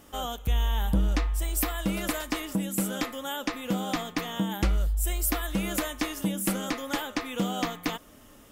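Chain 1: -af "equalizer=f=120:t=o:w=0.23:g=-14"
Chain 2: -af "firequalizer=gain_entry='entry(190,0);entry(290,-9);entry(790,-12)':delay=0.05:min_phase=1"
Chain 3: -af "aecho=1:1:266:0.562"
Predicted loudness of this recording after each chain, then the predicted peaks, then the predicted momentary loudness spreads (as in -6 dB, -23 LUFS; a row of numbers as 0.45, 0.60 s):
-30.0, -33.0, -28.5 LUFS; -13.5, -14.5, -13.0 dBFS; 5, 14, 5 LU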